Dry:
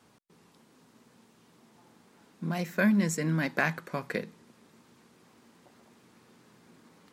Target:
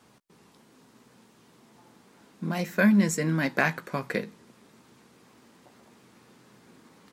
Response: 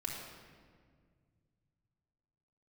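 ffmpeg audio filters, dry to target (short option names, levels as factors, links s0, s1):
-filter_complex "[0:a]asplit=2[s0][s1];[s1]adelay=15,volume=0.266[s2];[s0][s2]amix=inputs=2:normalize=0,volume=1.41"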